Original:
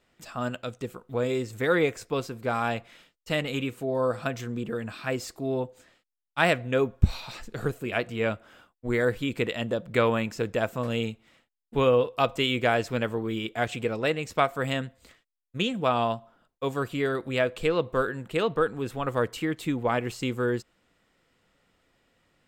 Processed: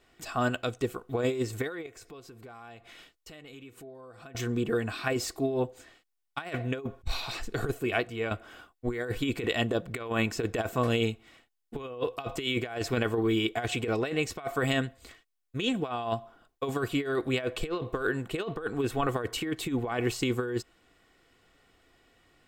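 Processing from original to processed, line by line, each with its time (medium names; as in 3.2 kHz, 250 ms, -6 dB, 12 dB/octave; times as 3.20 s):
1.86–4.35 s: compression, threshold -50 dBFS
7.64–8.31 s: fade out, to -11 dB
whole clip: comb 2.7 ms, depth 43%; compressor with a negative ratio -28 dBFS, ratio -0.5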